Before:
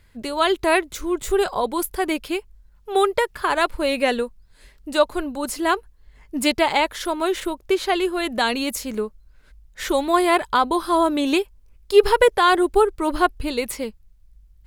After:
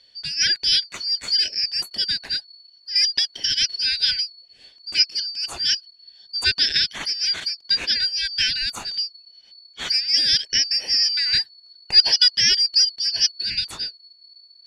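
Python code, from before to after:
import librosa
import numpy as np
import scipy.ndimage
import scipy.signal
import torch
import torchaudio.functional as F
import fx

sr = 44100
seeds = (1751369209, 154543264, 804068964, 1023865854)

y = fx.band_shuffle(x, sr, order='4321')
y = fx.air_absorb(y, sr, metres=86.0)
y = y * librosa.db_to_amplitude(2.5)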